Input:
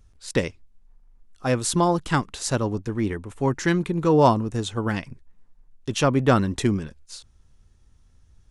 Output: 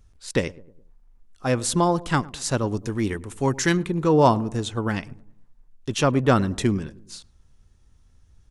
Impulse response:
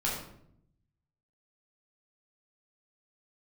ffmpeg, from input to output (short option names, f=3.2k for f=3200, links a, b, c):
-filter_complex "[0:a]asettb=1/sr,asplit=3[a][b][c];[a]atrim=end=2.674[d];[b]atrim=start=2.67:end=3.77,asetpts=PTS-STARTPTS,afade=t=in:d=0.004:c=qsin,afade=t=out:st=1.096:d=0.004:c=qsin,highshelf=f=3.6k:g=10.5[e];[c]atrim=start=3.766[f];[d][e]acrossfade=d=0.004:c1=hsin:c2=qsin[g];[g][f]acrossfade=d=0.004:c1=qsin:c2=hsin,asplit=2[h][i];[i]adelay=105,lowpass=f=890:p=1,volume=-19dB,asplit=2[j][k];[k]adelay=105,lowpass=f=890:p=1,volume=0.51,asplit=2[l][m];[m]adelay=105,lowpass=f=890:p=1,volume=0.51,asplit=2[n][o];[o]adelay=105,lowpass=f=890:p=1,volume=0.51[p];[j][l][n][p]amix=inputs=4:normalize=0[q];[h][q]amix=inputs=2:normalize=0"